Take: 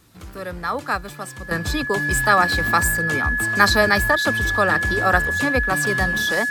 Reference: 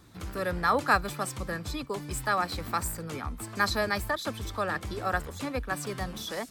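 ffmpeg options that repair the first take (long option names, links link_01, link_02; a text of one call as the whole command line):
ffmpeg -i in.wav -af "bandreject=frequency=1700:width=30,agate=range=-21dB:threshold=-27dB,asetnsamples=nb_out_samples=441:pad=0,asendcmd='1.51 volume volume -11dB',volume=0dB" out.wav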